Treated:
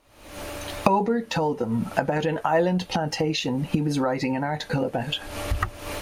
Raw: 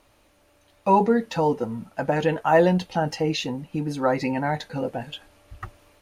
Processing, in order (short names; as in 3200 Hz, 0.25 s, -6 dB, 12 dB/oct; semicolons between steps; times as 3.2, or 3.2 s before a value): recorder AGC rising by 76 dB/s; gain -4 dB